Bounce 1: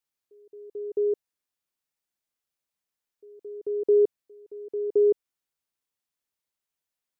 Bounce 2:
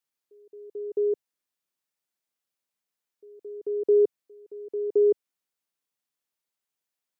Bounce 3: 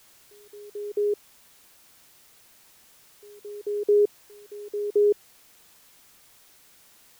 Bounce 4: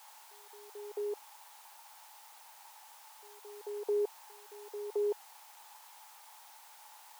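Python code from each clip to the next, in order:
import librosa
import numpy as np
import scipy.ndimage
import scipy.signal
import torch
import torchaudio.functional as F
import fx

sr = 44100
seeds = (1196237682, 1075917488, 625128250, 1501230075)

y1 = scipy.signal.sosfilt(scipy.signal.butter(2, 120.0, 'highpass', fs=sr, output='sos'), x)
y2 = fx.dmg_noise_colour(y1, sr, seeds[0], colour='white', level_db=-56.0)
y3 = fx.highpass_res(y2, sr, hz=860.0, q=9.9)
y3 = y3 * 10.0 ** (-1.5 / 20.0)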